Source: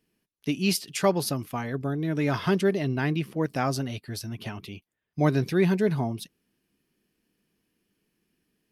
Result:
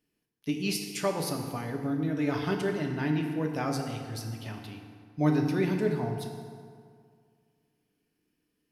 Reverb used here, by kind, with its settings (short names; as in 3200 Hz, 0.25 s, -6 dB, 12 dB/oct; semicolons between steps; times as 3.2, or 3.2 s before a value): FDN reverb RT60 2.1 s, low-frequency decay 1×, high-frequency decay 0.6×, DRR 2 dB; gain -6 dB